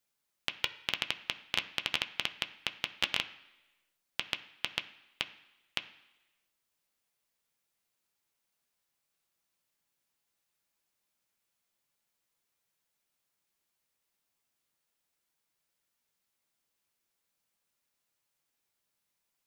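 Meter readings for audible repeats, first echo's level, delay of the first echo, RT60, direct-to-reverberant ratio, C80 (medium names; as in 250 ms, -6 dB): no echo, no echo, no echo, 1.1 s, 6.5 dB, 17.0 dB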